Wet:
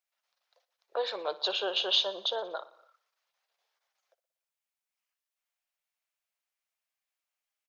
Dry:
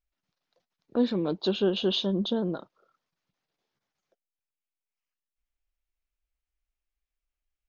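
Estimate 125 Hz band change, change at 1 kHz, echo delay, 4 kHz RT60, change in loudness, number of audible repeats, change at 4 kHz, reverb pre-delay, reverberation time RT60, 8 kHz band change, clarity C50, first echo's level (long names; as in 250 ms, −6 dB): below −35 dB, +4.0 dB, 60 ms, no reverb audible, −2.5 dB, 4, +4.0 dB, no reverb audible, no reverb audible, can't be measured, no reverb audible, −18.0 dB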